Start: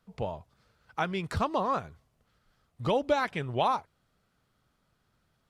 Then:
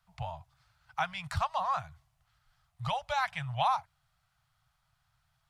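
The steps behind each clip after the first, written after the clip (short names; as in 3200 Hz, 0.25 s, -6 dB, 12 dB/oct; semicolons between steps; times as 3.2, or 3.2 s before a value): Chebyshev band-stop 140–730 Hz, order 3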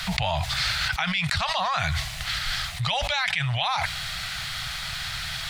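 graphic EQ 125/250/1000/2000/4000/8000 Hz -6/+10/-6/+10/+11/+4 dB; fast leveller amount 100%; gain -2 dB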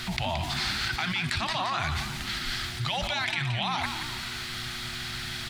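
frequency-shifting echo 0.173 s, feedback 50%, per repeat +61 Hz, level -8 dB; buzz 120 Hz, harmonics 3, -42 dBFS -3 dB/oct; gain -4.5 dB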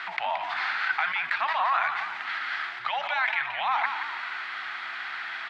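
Butterworth band-pass 1300 Hz, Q 0.95; gain +6.5 dB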